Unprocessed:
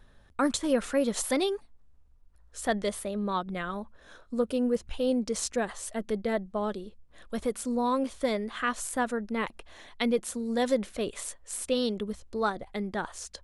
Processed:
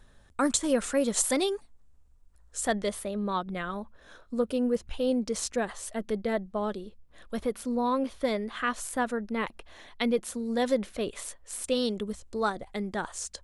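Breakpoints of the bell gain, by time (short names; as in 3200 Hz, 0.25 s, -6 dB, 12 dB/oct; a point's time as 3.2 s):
bell 7800 Hz 0.78 oct
+8.5 dB
from 2.72 s -1 dB
from 7.39 s -9 dB
from 8.24 s -2.5 dB
from 11.64 s +6.5 dB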